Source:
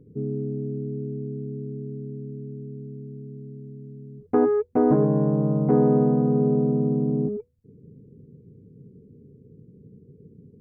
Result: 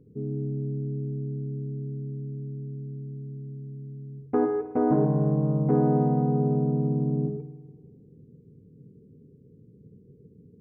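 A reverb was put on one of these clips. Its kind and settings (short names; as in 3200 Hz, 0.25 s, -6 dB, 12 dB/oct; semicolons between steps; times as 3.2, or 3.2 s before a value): spring tank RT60 1.4 s, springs 51 ms, chirp 40 ms, DRR 8 dB; gain -4 dB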